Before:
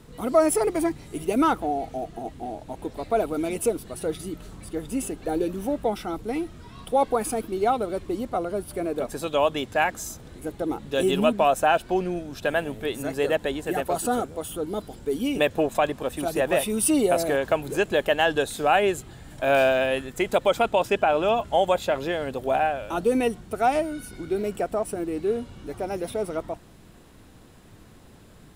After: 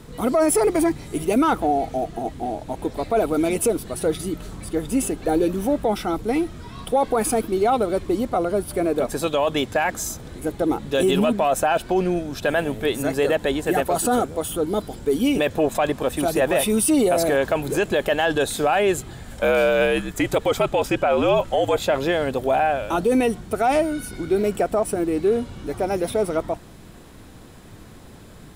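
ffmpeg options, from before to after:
-filter_complex "[0:a]asettb=1/sr,asplit=3[a][b][c];[a]atrim=end=19.254[d];[b]atrim=start=19.25:end=21.8,asetpts=PTS-STARTPTS,afade=t=in:d=0.004:c=qsin,afade=t=out:st=2.546:d=0.004:c=qsin,afreqshift=-68[e];[c]atrim=start=21.796[f];[d][e]acrossfade=d=0.004:c1=hsin:c2=qsin[g];[g][f]acrossfade=d=0.004:c1=qsin:c2=hsin,bandreject=f=2.8k:w=27,acontrast=39,alimiter=limit=-12.5dB:level=0:latency=1:release=18,volume=1dB"

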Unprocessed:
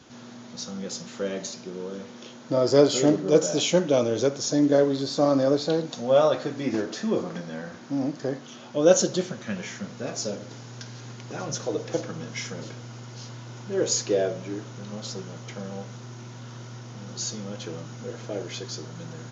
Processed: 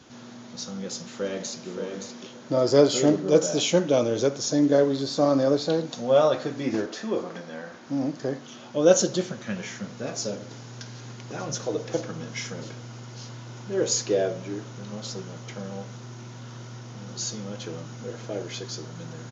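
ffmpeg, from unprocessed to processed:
-filter_complex "[0:a]asplit=2[a][b];[b]afade=t=in:st=0.67:d=0.01,afade=t=out:st=1.68:d=0.01,aecho=0:1:570|1140|1710:0.501187|0.0751781|0.0112767[c];[a][c]amix=inputs=2:normalize=0,asettb=1/sr,asplit=3[d][e][f];[d]atrim=end=6.864[g];[e]atrim=start=6.86:end=7.87,asetpts=PTS-STARTPTS,afade=t=in:d=0.004:c=qsin,afade=t=out:st=1.006:d=0.004:c=qsin,bass=f=250:g=-9,treble=f=4k:g=-3[h];[f]atrim=start=7.866[i];[g][h]acrossfade=d=0.004:c1=hsin:c2=qsin[j];[j][i]acrossfade=d=0.004:c1=qsin:c2=hsin"

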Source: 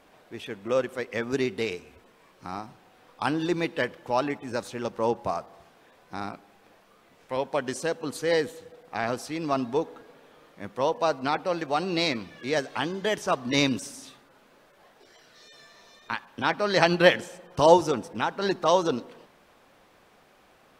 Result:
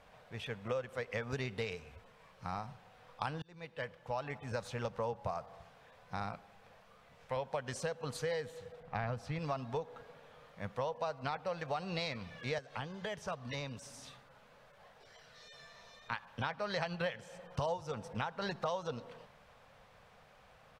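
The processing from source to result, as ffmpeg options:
-filter_complex "[0:a]asettb=1/sr,asplit=3[a][b][c];[a]atrim=end=8.804[d];[b]atrim=start=8.8:end=9.39,asetpts=PTS-STARTPTS,afade=t=in:d=0.004:c=qsin,afade=t=out:st=0.586:d=0.004:c=qsin,bass=f=250:g=8,treble=f=4k:g=-9[e];[c]atrim=start=9.386[f];[d][e]acrossfade=d=0.004:c1=hsin:c2=qsin[g];[g][f]acrossfade=d=0.004:c1=qsin:c2=hsin,asettb=1/sr,asplit=3[h][i][j];[h]atrim=end=12.584[k];[i]atrim=start=12.58:end=16.12,asetpts=PTS-STARTPTS,afade=t=in:d=0.004:c=qsin,afade=t=out:st=3.536:d=0.004:c=qsin,acrossover=split=590|1200[l][m][n];[l]acompressor=threshold=-38dB:ratio=4[o];[m]acompressor=threshold=-45dB:ratio=4[p];[n]acompressor=threshold=-42dB:ratio=4[q];[o][p][q]amix=inputs=3:normalize=0[r];[j]atrim=start=16.116[s];[k][r]acrossfade=d=0.004:c1=hsin:c2=qsin[t];[t][s]acrossfade=d=0.004:c1=qsin:c2=hsin,asplit=2[u][v];[u]atrim=end=3.42,asetpts=PTS-STARTPTS,afade=t=out:st=3.416:d=0.004:c=hsin[w];[v]atrim=start=3.42,asetpts=PTS-STARTPTS,afade=t=in:d=1.24[x];[w][x]concat=n=2:v=0:a=1,firequalizer=gain_entry='entry(130,0);entry(330,-22);entry(470,-6)':delay=0.05:min_phase=1,acompressor=threshold=-37dB:ratio=8,highshelf=f=7.8k:g=-10,volume=3.5dB"

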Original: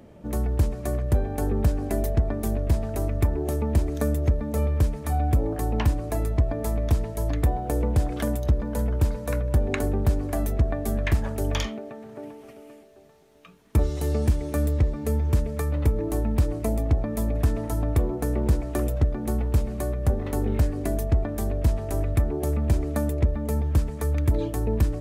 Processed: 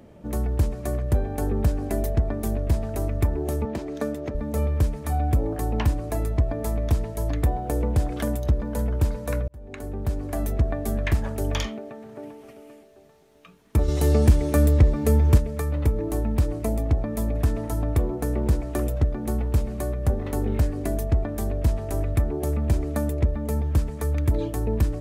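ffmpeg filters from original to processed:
-filter_complex "[0:a]asettb=1/sr,asplit=3[a][b][c];[a]atrim=end=3.654[d];[b]atrim=start=3.65:end=4.35,asetpts=PTS-STARTPTS,afade=t=in:d=0.004:c=qsin,afade=t=out:st=0.696:d=0.004:c=qsin,acrossover=split=170 6200:gain=0.1 1 0.251[e][f][g];[e][f][g]amix=inputs=3:normalize=0[h];[c]atrim=start=4.346[i];[d][h]acrossfade=d=0.004:c1=hsin:c2=qsin[j];[j][i]acrossfade=d=0.004:c1=qsin:c2=hsin,asettb=1/sr,asplit=3[k][l][m];[k]atrim=end=13.884[n];[l]atrim=start=13.88:end=15.38,asetpts=PTS-STARTPTS,afade=t=in:d=0.004:c=qsin,afade=t=out:st=1.496:d=0.004:c=qsin,acontrast=51[o];[m]atrim=start=15.376[p];[n][o]acrossfade=d=0.004:c1=hsin:c2=qsin[q];[q][p]acrossfade=d=0.004:c1=qsin:c2=hsin,asplit=2[r][s];[r]atrim=end=9.48,asetpts=PTS-STARTPTS,afade=t=out:st=9.476:d=0.004:c=hsin[t];[s]atrim=start=9.48,asetpts=PTS-STARTPTS,afade=t=in:d=1.03[u];[t][u]concat=n=2:v=0:a=1"

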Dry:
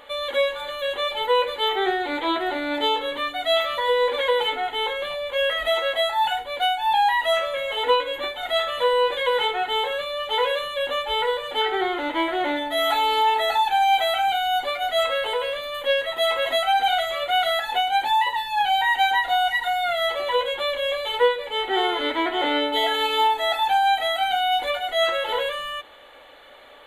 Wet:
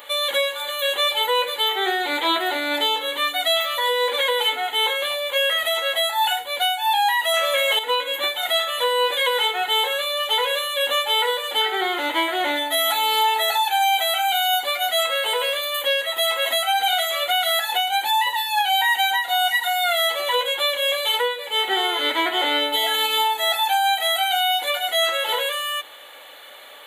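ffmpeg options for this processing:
-filter_complex "[0:a]asplit=3[a][b][c];[a]atrim=end=7.342[d];[b]atrim=start=7.338:end=7.792,asetpts=PTS-STARTPTS,volume=10dB[e];[c]atrim=start=7.788[f];[d][e]acrossfade=d=0.004:c1=hsin:c2=hsin[g];[g][f]acrossfade=d=0.004:c1=hsin:c2=hsin,highpass=f=460:p=1,aemphasis=mode=production:type=75kf,alimiter=limit=-14dB:level=0:latency=1:release=447,volume=3dB"

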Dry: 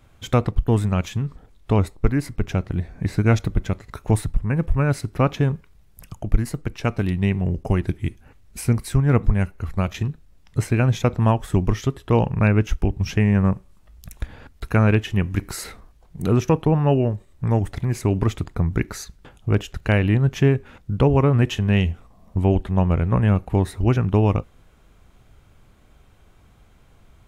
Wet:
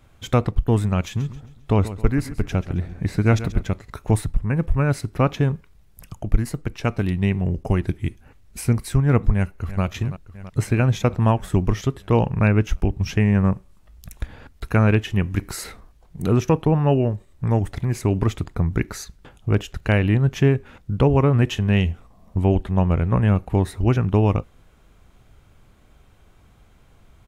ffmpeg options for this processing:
-filter_complex "[0:a]asettb=1/sr,asplit=3[a][b][c];[a]atrim=end=1.034[d];[b]atrim=start=1.03:end=3.63,asetpts=PTS-STARTPTS,afade=t=in:d=0.004:c=qsin,afade=t=out:st=2.596:d=0.004:c=qsin,aecho=1:1:134|268|402|536:0.2|0.0818|0.0335|0.0138,atrim=end_sample=114660[e];[c]atrim=start=3.626[f];[d][e]acrossfade=d=0.004:c1=hsin:c2=qsin[g];[g][f]acrossfade=d=0.004:c1=qsin:c2=hsin,asplit=2[h][i];[i]afade=t=in:st=9.35:d=0.01,afade=t=out:st=9.83:d=0.01,aecho=0:1:330|660|990|1320|1650|1980|2310|2640|2970|3300|3630:0.199526|0.149645|0.112234|0.0841751|0.0631313|0.0473485|0.0355114|0.0266335|0.0199752|0.0149814|0.011236[j];[h][j]amix=inputs=2:normalize=0"

